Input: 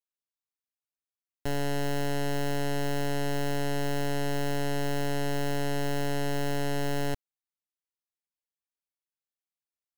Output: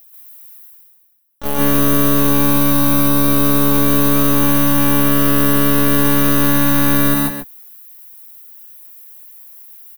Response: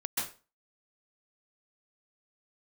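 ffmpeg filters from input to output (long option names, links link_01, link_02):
-filter_complex "[0:a]areverse,acompressor=mode=upward:threshold=-48dB:ratio=2.5,areverse,aexciter=amount=12.5:drive=3.7:freq=10000,acontrast=38,asplit=3[link_01][link_02][link_03];[link_02]asetrate=66075,aresample=44100,atempo=0.66742,volume=-1dB[link_04];[link_03]asetrate=88200,aresample=44100,atempo=0.5,volume=-3dB[link_05];[link_01][link_04][link_05]amix=inputs=3:normalize=0,aecho=1:1:133:0.376[link_06];[1:a]atrim=start_sample=2205,afade=type=out:start_time=0.21:duration=0.01,atrim=end_sample=9702[link_07];[link_06][link_07]afir=irnorm=-1:irlink=0,volume=-1dB"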